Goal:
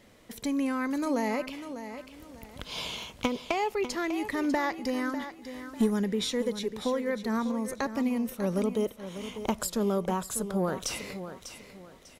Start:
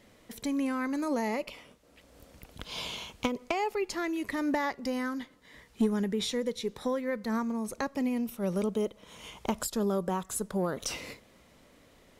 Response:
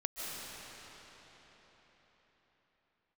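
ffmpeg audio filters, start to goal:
-filter_complex "[0:a]asettb=1/sr,asplit=3[a][b][c];[a]atrim=end=5.224[d];[b]atrim=start=5.22:end=5.99,asetpts=PTS-STARTPTS,afade=t=in:d=0.004:c=qsin,afade=t=out:st=0.766:d=0.004:c=qsin,highshelf=f=6.5k:g=7[e];[c]atrim=start=5.986[f];[d][e]acrossfade=d=0.004:c1=hsin:c2=qsin[g];[g][f]acrossfade=d=0.004:c1=qsin:c2=hsin,aecho=1:1:597|1194|1791:0.282|0.0846|0.0254,volume=1.5dB"

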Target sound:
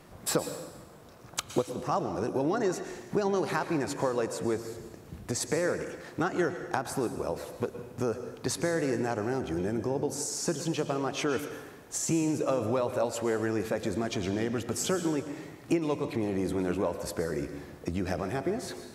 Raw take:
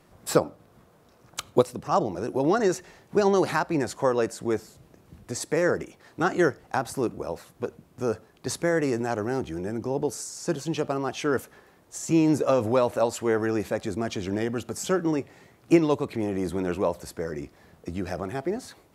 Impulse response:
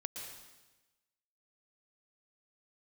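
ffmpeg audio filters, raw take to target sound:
-filter_complex "[0:a]acompressor=threshold=-34dB:ratio=3,asplit=2[a][b];[1:a]atrim=start_sample=2205[c];[b][c]afir=irnorm=-1:irlink=0,volume=1dB[d];[a][d]amix=inputs=2:normalize=0"

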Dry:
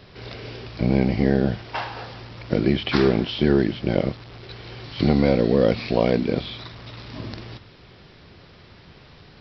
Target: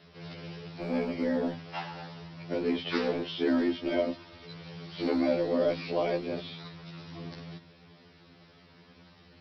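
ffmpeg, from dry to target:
-filter_complex "[0:a]afreqshift=49,asettb=1/sr,asplit=3[a][b][c];[a]atrim=end=3.484[d];[b]atrim=start=3.48:end=4.45,asetpts=PTS-STARTPTS,afade=t=in:d=0.004:c=qsin,afade=t=out:st=0.966:d=0.004:c=qsin,aecho=1:1:3.2:0.98,atrim=end_sample=42777[e];[c]atrim=start=4.446[f];[d][e]acrossfade=d=0.004:c1=hsin:c2=qsin[g];[g][f]acrossfade=d=0.004:c1=qsin:c2=hsin,acrossover=split=230|1500[h][i][j];[h]aeval=exprs='0.0251*(abs(mod(val(0)/0.0251+3,4)-2)-1)':c=same[k];[k][i][j]amix=inputs=3:normalize=0,afftfilt=real='re*2*eq(mod(b,4),0)':imag='im*2*eq(mod(b,4),0)':win_size=2048:overlap=0.75,volume=-6dB"

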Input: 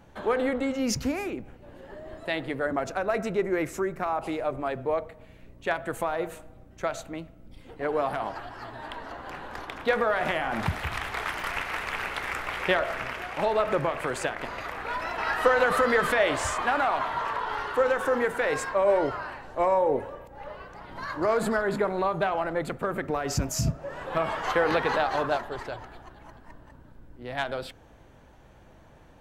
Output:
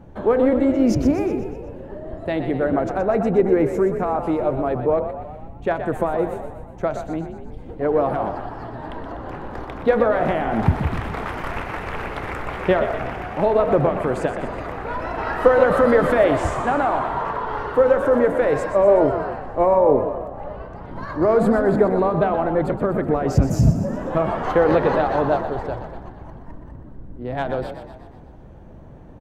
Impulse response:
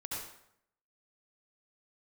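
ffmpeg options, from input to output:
-filter_complex "[0:a]tiltshelf=f=1.1k:g=9.5,asplit=7[a][b][c][d][e][f][g];[b]adelay=123,afreqshift=43,volume=-9.5dB[h];[c]adelay=246,afreqshift=86,volume=-14.7dB[i];[d]adelay=369,afreqshift=129,volume=-19.9dB[j];[e]adelay=492,afreqshift=172,volume=-25.1dB[k];[f]adelay=615,afreqshift=215,volume=-30.3dB[l];[g]adelay=738,afreqshift=258,volume=-35.5dB[m];[a][h][i][j][k][l][m]amix=inputs=7:normalize=0,volume=2.5dB"

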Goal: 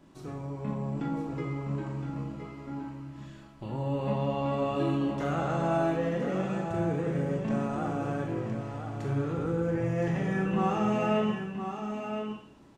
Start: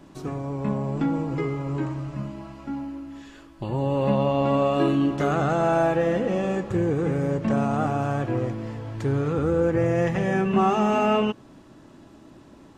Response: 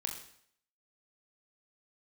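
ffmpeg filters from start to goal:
-filter_complex "[0:a]aecho=1:1:1016:0.422[a];[1:a]atrim=start_sample=2205[b];[a][b]afir=irnorm=-1:irlink=0,volume=-8.5dB"

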